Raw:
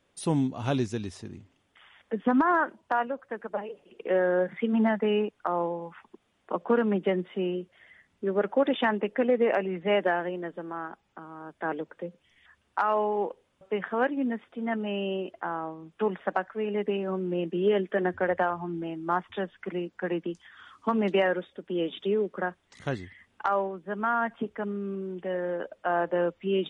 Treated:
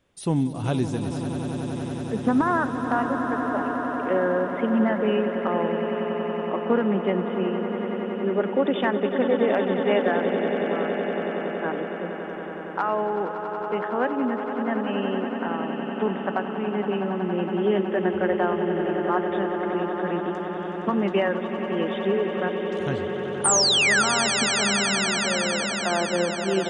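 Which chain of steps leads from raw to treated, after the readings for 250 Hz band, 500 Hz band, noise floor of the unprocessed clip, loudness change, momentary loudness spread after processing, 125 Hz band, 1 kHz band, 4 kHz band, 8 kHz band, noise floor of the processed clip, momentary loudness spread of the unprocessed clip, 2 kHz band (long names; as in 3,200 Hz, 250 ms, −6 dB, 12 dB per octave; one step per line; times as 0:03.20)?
+5.0 dB, +4.0 dB, −71 dBFS, +4.5 dB, 8 LU, +6.0 dB, +3.5 dB, +14.5 dB, can't be measured, −32 dBFS, 12 LU, +6.5 dB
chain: low-shelf EQ 190 Hz +6.5 dB
sound drawn into the spectrogram fall, 0:23.44–0:24.03, 1,300–9,400 Hz −20 dBFS
echo that builds up and dies away 93 ms, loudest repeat 8, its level −12 dB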